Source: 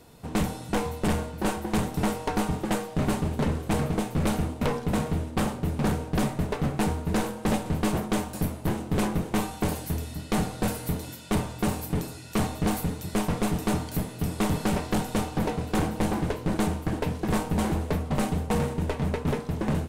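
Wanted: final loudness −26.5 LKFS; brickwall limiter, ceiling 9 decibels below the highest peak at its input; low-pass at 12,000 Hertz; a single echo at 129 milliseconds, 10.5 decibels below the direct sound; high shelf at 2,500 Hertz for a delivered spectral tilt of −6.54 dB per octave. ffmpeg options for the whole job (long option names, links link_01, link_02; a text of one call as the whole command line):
ffmpeg -i in.wav -af "lowpass=12000,highshelf=frequency=2500:gain=-3.5,alimiter=level_in=5dB:limit=-24dB:level=0:latency=1,volume=-5dB,aecho=1:1:129:0.299,volume=9.5dB" out.wav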